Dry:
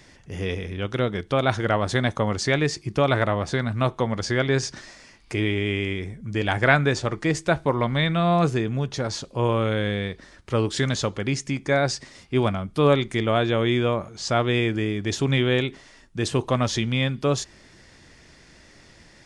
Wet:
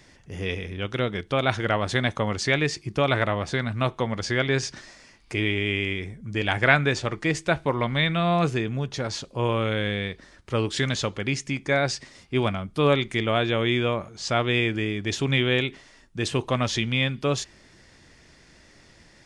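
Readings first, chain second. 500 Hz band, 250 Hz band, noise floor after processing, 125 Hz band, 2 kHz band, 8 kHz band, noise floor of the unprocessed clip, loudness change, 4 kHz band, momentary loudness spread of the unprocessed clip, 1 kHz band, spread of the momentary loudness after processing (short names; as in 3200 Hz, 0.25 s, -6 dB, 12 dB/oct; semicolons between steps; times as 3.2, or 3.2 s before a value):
-2.5 dB, -2.5 dB, -55 dBFS, -2.5 dB, +1.0 dB, -2.0 dB, -52 dBFS, -1.5 dB, +1.0 dB, 9 LU, -1.5 dB, 9 LU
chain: dynamic EQ 2600 Hz, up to +6 dB, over -41 dBFS, Q 1.2; gain -2.5 dB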